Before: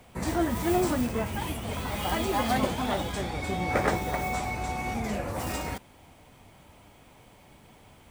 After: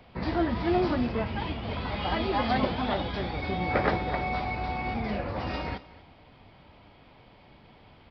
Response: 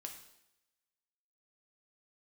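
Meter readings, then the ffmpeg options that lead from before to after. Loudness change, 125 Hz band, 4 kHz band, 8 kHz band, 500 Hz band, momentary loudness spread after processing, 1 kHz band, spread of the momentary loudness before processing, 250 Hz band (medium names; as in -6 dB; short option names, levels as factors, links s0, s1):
0.0 dB, +0.5 dB, 0.0 dB, under -25 dB, 0.0 dB, 7 LU, 0.0 dB, 7 LU, 0.0 dB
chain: -af "aresample=11025,aresample=44100,aecho=1:1:243:0.112"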